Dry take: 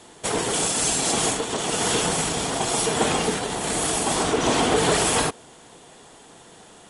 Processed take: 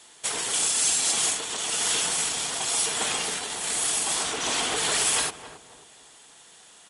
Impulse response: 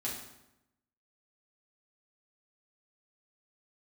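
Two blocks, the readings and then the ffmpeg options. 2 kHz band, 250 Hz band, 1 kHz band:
-3.0 dB, -15.0 dB, -8.0 dB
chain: -filter_complex "[0:a]aeval=exprs='0.422*(cos(1*acos(clip(val(0)/0.422,-1,1)))-cos(1*PI/2))+0.00944*(cos(3*acos(clip(val(0)/0.422,-1,1)))-cos(3*PI/2))':c=same,tiltshelf=f=970:g=-9,asplit=2[s0][s1];[s1]adelay=269,lowpass=f=1000:p=1,volume=0.316,asplit=2[s2][s3];[s3]adelay=269,lowpass=f=1000:p=1,volume=0.42,asplit=2[s4][s5];[s5]adelay=269,lowpass=f=1000:p=1,volume=0.42,asplit=2[s6][s7];[s7]adelay=269,lowpass=f=1000:p=1,volume=0.42[s8];[s0][s2][s4][s6][s8]amix=inputs=5:normalize=0,volume=0.422"

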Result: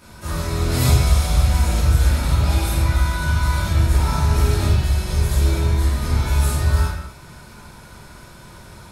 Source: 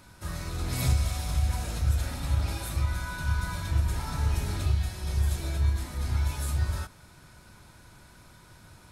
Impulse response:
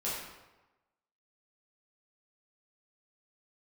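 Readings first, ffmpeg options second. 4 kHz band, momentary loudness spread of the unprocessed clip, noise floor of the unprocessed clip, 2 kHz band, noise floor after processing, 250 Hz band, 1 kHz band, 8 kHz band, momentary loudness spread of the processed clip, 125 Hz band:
+10.5 dB, 4 LU, -54 dBFS, +10.0 dB, -42 dBFS, +12.5 dB, +12.0 dB, +10.0 dB, 5 LU, +10.5 dB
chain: -filter_complex "[1:a]atrim=start_sample=2205,afade=t=out:st=0.33:d=0.01,atrim=end_sample=14994[s0];[0:a][s0]afir=irnorm=-1:irlink=0,volume=2.24"

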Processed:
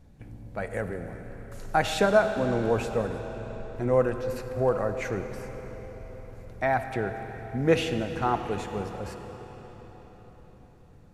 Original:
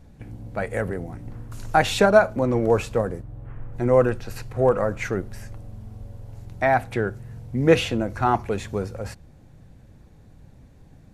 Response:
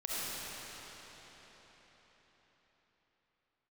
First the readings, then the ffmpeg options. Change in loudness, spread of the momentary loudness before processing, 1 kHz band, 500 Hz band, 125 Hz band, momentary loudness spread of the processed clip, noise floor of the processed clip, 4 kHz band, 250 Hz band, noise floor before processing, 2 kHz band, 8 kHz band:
-5.5 dB, 22 LU, -5.0 dB, -5.0 dB, -5.5 dB, 19 LU, -52 dBFS, -5.0 dB, -5.0 dB, -50 dBFS, -5.0 dB, -5.0 dB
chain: -filter_complex "[0:a]asplit=2[s0][s1];[1:a]atrim=start_sample=2205[s2];[s1][s2]afir=irnorm=-1:irlink=0,volume=0.266[s3];[s0][s3]amix=inputs=2:normalize=0,volume=0.447"

